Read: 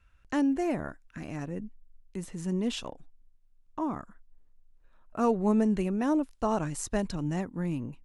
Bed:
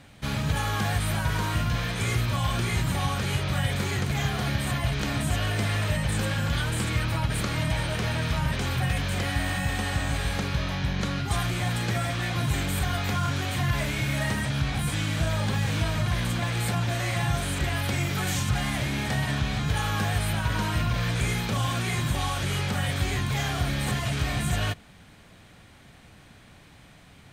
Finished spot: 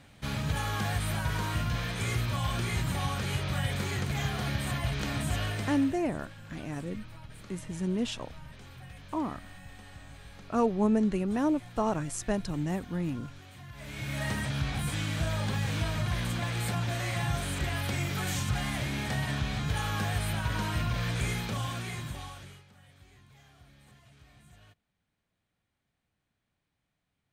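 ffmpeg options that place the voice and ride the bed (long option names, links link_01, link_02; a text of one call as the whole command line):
ffmpeg -i stem1.wav -i stem2.wav -filter_complex "[0:a]adelay=5350,volume=-0.5dB[link_01];[1:a]volume=12.5dB,afade=type=out:start_time=5.41:duration=0.57:silence=0.141254,afade=type=in:start_time=13.75:duration=0.56:silence=0.141254,afade=type=out:start_time=21.27:duration=1.37:silence=0.0501187[link_02];[link_01][link_02]amix=inputs=2:normalize=0" out.wav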